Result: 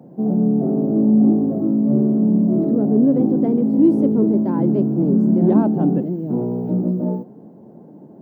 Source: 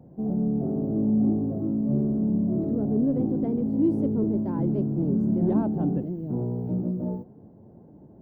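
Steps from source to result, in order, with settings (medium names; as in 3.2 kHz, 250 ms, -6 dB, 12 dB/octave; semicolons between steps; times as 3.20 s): high-pass 160 Hz 24 dB/octave; trim +9 dB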